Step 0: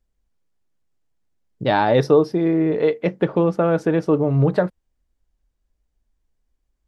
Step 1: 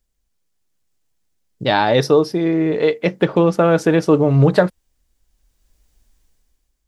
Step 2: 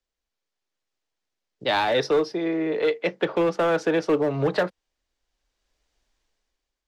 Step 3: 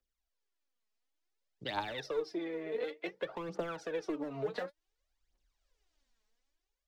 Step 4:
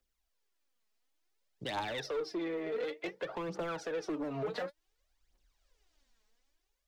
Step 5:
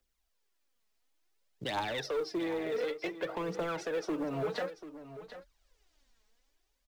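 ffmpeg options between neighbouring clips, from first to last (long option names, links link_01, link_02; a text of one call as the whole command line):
ffmpeg -i in.wav -af "highshelf=frequency=2700:gain=11.5,dynaudnorm=framelen=240:gausssize=7:maxgain=14dB,volume=-1dB" out.wav
ffmpeg -i in.wav -filter_complex "[0:a]acrossover=split=330 6100:gain=0.2 1 0.1[link_01][link_02][link_03];[link_01][link_02][link_03]amix=inputs=3:normalize=0,acrossover=split=200|390|1600[link_04][link_05][link_06][link_07];[link_06]asoftclip=type=hard:threshold=-19dB[link_08];[link_04][link_05][link_08][link_07]amix=inputs=4:normalize=0,volume=-3.5dB" out.wav
ffmpeg -i in.wav -af "acompressor=threshold=-28dB:ratio=6,aphaser=in_gain=1:out_gain=1:delay=4.8:decay=0.69:speed=0.56:type=triangular,volume=-9dB" out.wav
ffmpeg -i in.wav -filter_complex "[0:a]asplit=2[link_01][link_02];[link_02]alimiter=level_in=9.5dB:limit=-24dB:level=0:latency=1:release=67,volume=-9.5dB,volume=-2dB[link_03];[link_01][link_03]amix=inputs=2:normalize=0,asoftclip=type=tanh:threshold=-30dB" out.wav
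ffmpeg -i in.wav -filter_complex "[0:a]asplit=2[link_01][link_02];[link_02]acrusher=bits=4:mode=log:mix=0:aa=0.000001,volume=-10.5dB[link_03];[link_01][link_03]amix=inputs=2:normalize=0,aecho=1:1:739:0.224" out.wav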